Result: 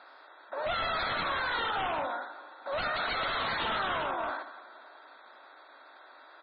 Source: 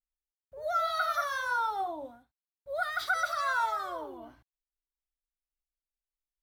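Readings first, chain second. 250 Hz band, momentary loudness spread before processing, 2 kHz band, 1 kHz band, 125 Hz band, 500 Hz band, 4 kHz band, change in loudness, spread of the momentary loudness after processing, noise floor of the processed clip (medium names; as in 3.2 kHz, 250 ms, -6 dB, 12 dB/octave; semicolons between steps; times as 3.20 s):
+6.0 dB, 13 LU, 0.0 dB, -0.5 dB, no reading, +2.0 dB, +7.5 dB, -0.5 dB, 14 LU, -55 dBFS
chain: spectral levelling over time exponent 0.4; high-pass 280 Hz 12 dB/octave; band-stop 3 kHz, Q 8.7; delay 178 ms -16.5 dB; Schroeder reverb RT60 2.7 s, combs from 32 ms, DRR 15 dB; wavefolder -26 dBFS; low-pass 4 kHz 24 dB/octave; MP3 16 kbps 22.05 kHz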